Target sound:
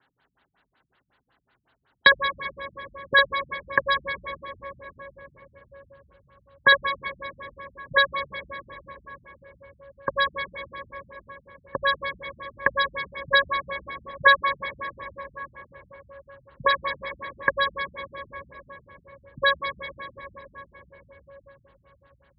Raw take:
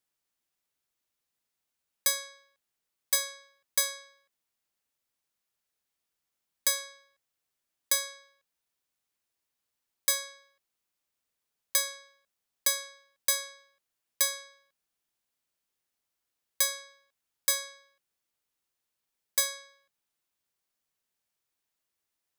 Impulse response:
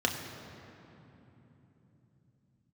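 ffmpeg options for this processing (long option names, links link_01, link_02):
-filter_complex "[0:a]asetnsamples=nb_out_samples=441:pad=0,asendcmd='13.43 equalizer g 13.5;16.65 equalizer g 5.5',equalizer=frequency=1200:width=0.55:gain=6,acompressor=threshold=-26dB:ratio=6[link_01];[1:a]atrim=start_sample=2205,asetrate=23373,aresample=44100[link_02];[link_01][link_02]afir=irnorm=-1:irlink=0,afftfilt=real='re*lt(b*sr/1024,210*pow(5000/210,0.5+0.5*sin(2*PI*5.4*pts/sr)))':imag='im*lt(b*sr/1024,210*pow(5000/210,0.5+0.5*sin(2*PI*5.4*pts/sr)))':win_size=1024:overlap=0.75,volume=7.5dB"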